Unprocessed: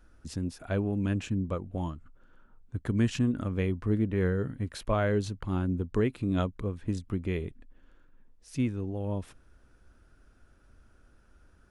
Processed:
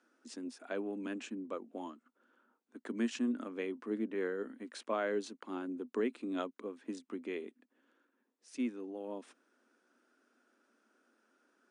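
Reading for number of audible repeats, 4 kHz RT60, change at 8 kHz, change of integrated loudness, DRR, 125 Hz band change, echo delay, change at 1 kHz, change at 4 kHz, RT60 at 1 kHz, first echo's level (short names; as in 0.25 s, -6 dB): none, none, -5.5 dB, -8.5 dB, none, under -25 dB, none, -5.5 dB, -6.0 dB, none, none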